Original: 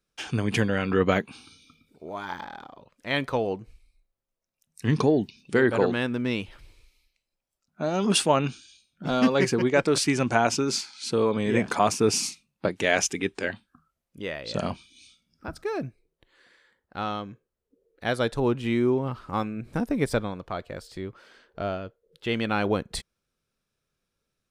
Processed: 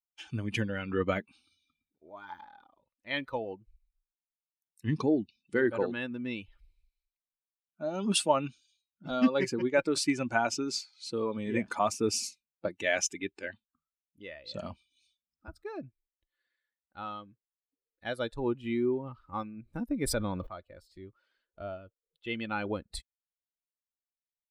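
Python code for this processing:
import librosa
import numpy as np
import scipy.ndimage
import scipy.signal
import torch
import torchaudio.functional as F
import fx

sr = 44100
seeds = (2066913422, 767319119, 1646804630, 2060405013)

y = fx.env_flatten(x, sr, amount_pct=70, at=(20.04, 20.47))
y = fx.bin_expand(y, sr, power=1.5)
y = y + 0.3 * np.pad(y, (int(3.4 * sr / 1000.0), 0))[:len(y)]
y = F.gain(torch.from_numpy(y), -3.5).numpy()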